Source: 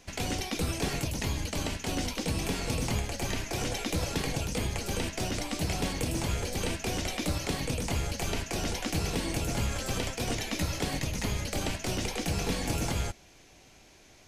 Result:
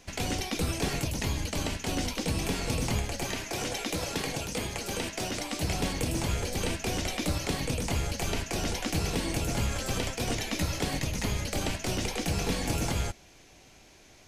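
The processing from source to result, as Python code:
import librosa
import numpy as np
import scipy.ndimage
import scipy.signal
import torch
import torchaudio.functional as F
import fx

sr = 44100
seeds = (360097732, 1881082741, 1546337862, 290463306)

y = fx.low_shelf(x, sr, hz=140.0, db=-10.0, at=(3.23, 5.63))
y = F.gain(torch.from_numpy(y), 1.0).numpy()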